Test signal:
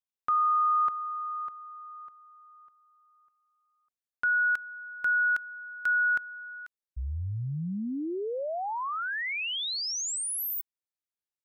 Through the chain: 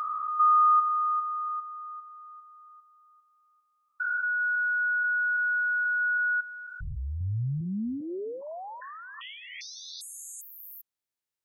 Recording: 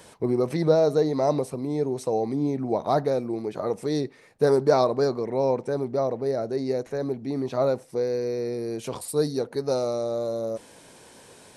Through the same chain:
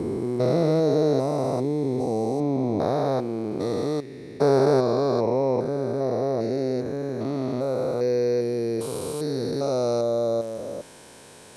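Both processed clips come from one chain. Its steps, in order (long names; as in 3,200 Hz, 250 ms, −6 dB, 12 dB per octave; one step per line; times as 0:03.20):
spectrum averaged block by block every 400 ms
level +4.5 dB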